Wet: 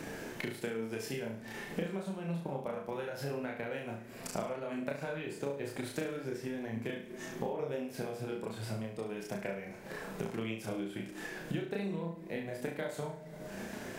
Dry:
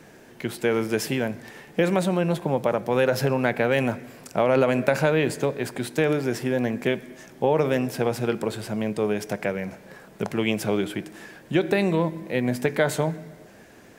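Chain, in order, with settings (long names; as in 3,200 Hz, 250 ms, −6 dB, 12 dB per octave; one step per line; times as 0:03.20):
multi-voice chorus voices 4, 0.5 Hz, delay 28 ms, depth 3.1 ms
downward compressor 5 to 1, threshold −53 dBFS, peak gain reduction 30.5 dB
transient designer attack +4 dB, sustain −3 dB
flutter between parallel walls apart 6.1 metres, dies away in 0.45 s
level +11 dB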